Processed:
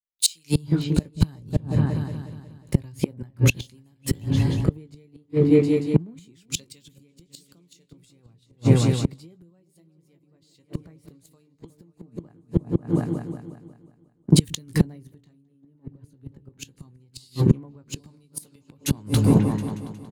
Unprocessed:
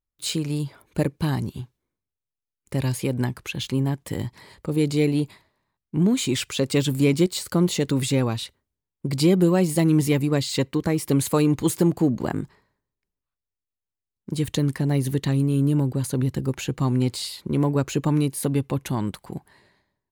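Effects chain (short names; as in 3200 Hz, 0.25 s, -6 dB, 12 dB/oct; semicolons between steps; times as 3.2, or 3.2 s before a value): bell 5700 Hz +2.5 dB 0.77 oct; doubler 18 ms -8.5 dB; repeats that get brighter 0.181 s, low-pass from 200 Hz, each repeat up 2 oct, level -6 dB; compressor 5:1, threshold -20 dBFS, peak gain reduction 8.5 dB; flipped gate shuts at -17 dBFS, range -27 dB; low shelf 240 Hz +8.5 dB; three-band expander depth 100%; gain +4.5 dB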